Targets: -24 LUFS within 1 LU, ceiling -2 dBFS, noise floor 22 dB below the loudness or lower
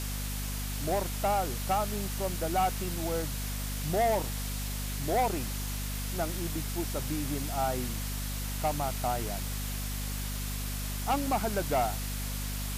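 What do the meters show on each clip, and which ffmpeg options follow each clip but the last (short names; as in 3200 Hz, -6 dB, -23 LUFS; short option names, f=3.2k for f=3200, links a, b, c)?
hum 50 Hz; harmonics up to 250 Hz; hum level -33 dBFS; noise floor -35 dBFS; noise floor target -54 dBFS; loudness -32.0 LUFS; peak -17.5 dBFS; loudness target -24.0 LUFS
-> -af "bandreject=f=50:t=h:w=4,bandreject=f=100:t=h:w=4,bandreject=f=150:t=h:w=4,bandreject=f=200:t=h:w=4,bandreject=f=250:t=h:w=4"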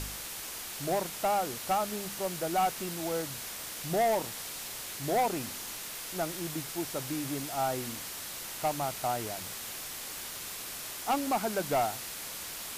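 hum none; noise floor -41 dBFS; noise floor target -55 dBFS
-> -af "afftdn=nr=14:nf=-41"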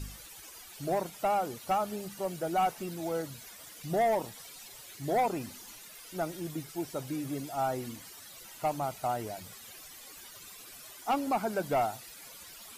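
noise floor -50 dBFS; noise floor target -56 dBFS
-> -af "afftdn=nr=6:nf=-50"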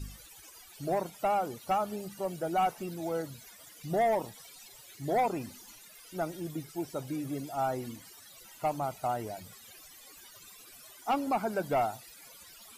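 noise floor -53 dBFS; noise floor target -55 dBFS
-> -af "afftdn=nr=6:nf=-53"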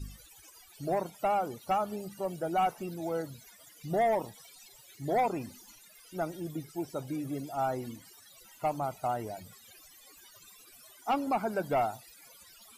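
noise floor -57 dBFS; loudness -33.0 LUFS; peak -20.5 dBFS; loudness target -24.0 LUFS
-> -af "volume=9dB"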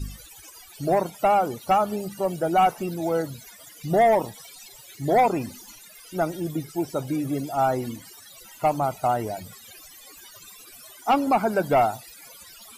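loudness -24.0 LUFS; peak -11.5 dBFS; noise floor -48 dBFS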